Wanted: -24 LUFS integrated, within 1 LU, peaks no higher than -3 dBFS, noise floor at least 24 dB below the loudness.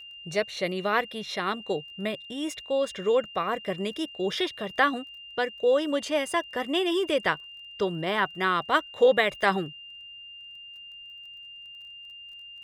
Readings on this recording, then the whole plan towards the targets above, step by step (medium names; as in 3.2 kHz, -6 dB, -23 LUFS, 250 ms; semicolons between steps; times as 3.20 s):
tick rate 19 per s; steady tone 2.8 kHz; tone level -42 dBFS; loudness -27.0 LUFS; peak level -8.0 dBFS; loudness target -24.0 LUFS
-> de-click; band-stop 2.8 kHz, Q 30; trim +3 dB